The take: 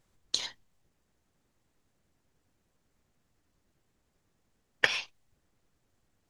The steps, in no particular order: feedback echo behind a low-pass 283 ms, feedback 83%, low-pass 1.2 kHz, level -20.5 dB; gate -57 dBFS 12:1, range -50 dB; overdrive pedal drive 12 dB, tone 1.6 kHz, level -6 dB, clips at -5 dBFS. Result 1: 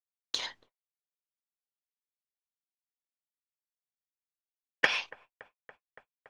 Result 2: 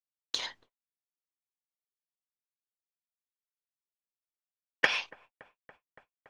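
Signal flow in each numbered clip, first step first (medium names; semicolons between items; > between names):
feedback echo behind a low-pass > gate > overdrive pedal; overdrive pedal > feedback echo behind a low-pass > gate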